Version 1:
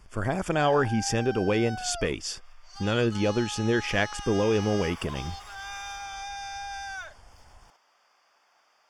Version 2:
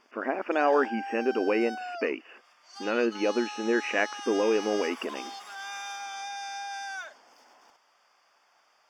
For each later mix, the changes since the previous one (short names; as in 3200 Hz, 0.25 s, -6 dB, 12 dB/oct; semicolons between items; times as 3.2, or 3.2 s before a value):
speech: add brick-wall FIR band-pass 220–3000 Hz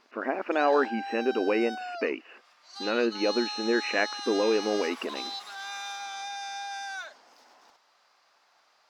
master: remove Butterworth band-stop 4000 Hz, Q 4.9